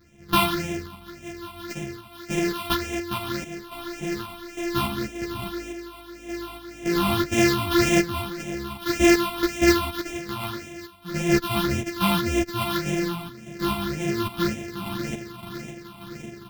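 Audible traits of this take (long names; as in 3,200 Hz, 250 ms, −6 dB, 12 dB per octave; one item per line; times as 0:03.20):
a buzz of ramps at a fixed pitch in blocks of 128 samples
phaser sweep stages 6, 1.8 Hz, lowest notch 460–1,200 Hz
sample-and-hold tremolo 3.5 Hz, depth 75%
a shimmering, thickened sound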